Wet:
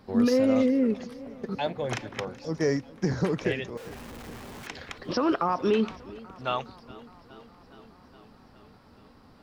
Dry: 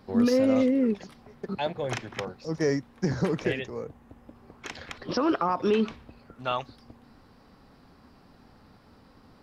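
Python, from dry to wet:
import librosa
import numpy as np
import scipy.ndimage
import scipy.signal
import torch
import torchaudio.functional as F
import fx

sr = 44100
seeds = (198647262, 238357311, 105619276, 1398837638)

y = fx.clip_1bit(x, sr, at=(3.77, 4.67))
y = fx.echo_warbled(y, sr, ms=416, feedback_pct=71, rate_hz=2.8, cents=64, wet_db=-21)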